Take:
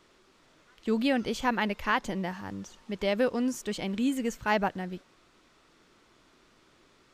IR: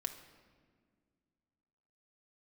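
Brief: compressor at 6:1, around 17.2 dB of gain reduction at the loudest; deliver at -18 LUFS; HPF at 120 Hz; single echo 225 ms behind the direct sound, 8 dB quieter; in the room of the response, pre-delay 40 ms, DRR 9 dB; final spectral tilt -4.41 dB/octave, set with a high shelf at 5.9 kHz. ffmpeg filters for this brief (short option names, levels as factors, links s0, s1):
-filter_complex "[0:a]highpass=120,highshelf=f=5900:g=3.5,acompressor=threshold=0.00891:ratio=6,aecho=1:1:225:0.398,asplit=2[s0][s1];[1:a]atrim=start_sample=2205,adelay=40[s2];[s1][s2]afir=irnorm=-1:irlink=0,volume=0.376[s3];[s0][s3]amix=inputs=2:normalize=0,volume=17.8"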